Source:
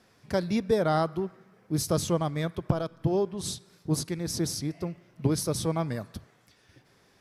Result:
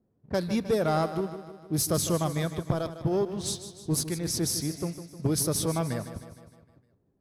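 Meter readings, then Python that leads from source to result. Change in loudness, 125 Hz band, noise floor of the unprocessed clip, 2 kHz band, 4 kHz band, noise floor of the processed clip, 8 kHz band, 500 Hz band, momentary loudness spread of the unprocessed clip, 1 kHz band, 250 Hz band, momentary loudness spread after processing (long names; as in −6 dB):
+0.5 dB, 0.0 dB, −63 dBFS, 0.0 dB, +2.0 dB, −71 dBFS, +5.0 dB, −0.5 dB, 11 LU, −0.5 dB, 0.0 dB, 9 LU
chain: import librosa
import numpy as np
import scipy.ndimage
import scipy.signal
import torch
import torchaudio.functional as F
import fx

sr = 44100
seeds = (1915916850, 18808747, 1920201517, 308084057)

p1 = fx.high_shelf(x, sr, hz=9100.0, db=12.0)
p2 = fx.env_lowpass(p1, sr, base_hz=350.0, full_db=-25.5)
p3 = fx.leveller(p2, sr, passes=1)
p4 = p3 + fx.echo_feedback(p3, sr, ms=154, feedback_pct=55, wet_db=-12.0, dry=0)
y = p4 * 10.0 ** (-3.5 / 20.0)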